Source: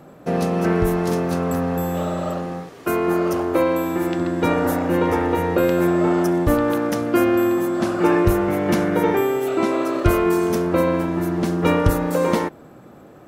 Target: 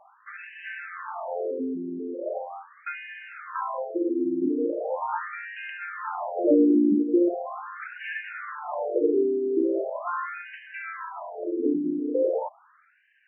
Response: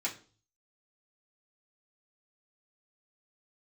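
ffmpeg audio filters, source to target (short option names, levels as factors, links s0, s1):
-filter_complex "[0:a]asettb=1/sr,asplit=3[s0][s1][s2];[s0]atrim=end=6.374[s3];[s1]atrim=start=6.37:end=7.03,asetpts=PTS-STARTPTS,afade=t=in:d=0.004:c=qsin,afade=t=out:st=0.656:d=0.004:c=qsin,acontrast=76[s4];[s2]atrim=start=7.026[s5];[s3][s4]acrossfade=d=0.004:c1=hsin:c2=qsin[s6];[s6][s5]acrossfade=d=0.004:c1=qsin:c2=hsin,afftfilt=real='re*between(b*sr/1024,290*pow(2200/290,0.5+0.5*sin(2*PI*0.4*pts/sr))/1.41,290*pow(2200/290,0.5+0.5*sin(2*PI*0.4*pts/sr))*1.41)':imag='im*between(b*sr/1024,290*pow(2200/290,0.5+0.5*sin(2*PI*0.4*pts/sr))/1.41,290*pow(2200/290,0.5+0.5*sin(2*PI*0.4*pts/sr))*1.41)':win_size=1024:overlap=0.75,volume=0.794"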